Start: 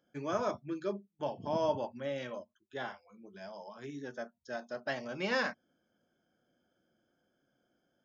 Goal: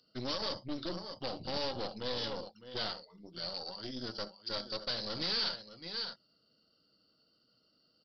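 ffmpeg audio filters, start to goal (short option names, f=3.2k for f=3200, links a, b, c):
-filter_complex "[0:a]asplit=2[a][b];[b]aecho=0:1:69|613:0.106|0.2[c];[a][c]amix=inputs=2:normalize=0,asetrate=39289,aresample=44100,atempo=1.12246,alimiter=level_in=3dB:limit=-24dB:level=0:latency=1:release=119,volume=-3dB,aeval=exprs='0.0447*(cos(1*acos(clip(val(0)/0.0447,-1,1)))-cos(1*PI/2))+0.0126*(cos(4*acos(clip(val(0)/0.0447,-1,1)))-cos(4*PI/2))':c=same,aexciter=amount=7.1:drive=10:freq=3.7k,aresample=11025,asoftclip=type=tanh:threshold=-28.5dB,aresample=44100"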